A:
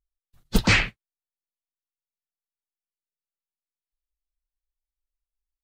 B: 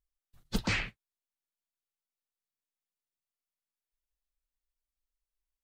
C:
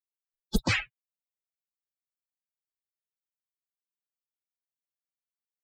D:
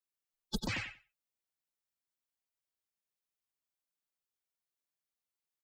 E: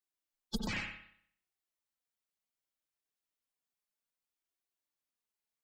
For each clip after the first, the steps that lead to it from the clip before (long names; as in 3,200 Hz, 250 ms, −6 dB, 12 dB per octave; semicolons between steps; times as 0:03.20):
downward compressor 3 to 1, threshold −28 dBFS, peak gain reduction 11 dB; level −2.5 dB
spectral dynamics exaggerated over time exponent 3; level +8 dB
downward compressor 12 to 1, threshold −33 dBFS, peak gain reduction 14.5 dB; repeating echo 92 ms, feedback 15%, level −6 dB
flanger 0.65 Hz, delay 2.5 ms, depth 2.4 ms, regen +46%; on a send at −5.5 dB: convolution reverb, pre-delay 58 ms; on the sum: level +2.5 dB